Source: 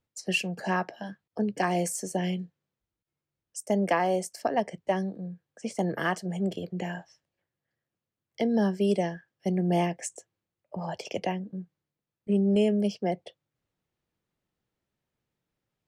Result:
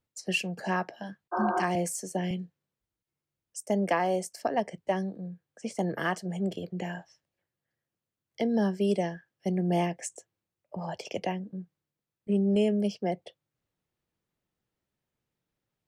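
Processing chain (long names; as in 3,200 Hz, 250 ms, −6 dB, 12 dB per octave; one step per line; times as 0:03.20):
0:01.35–0:01.60: healed spectral selection 240–1,600 Hz after
0:01.75–0:02.31: multiband upward and downward expander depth 40%
level −1.5 dB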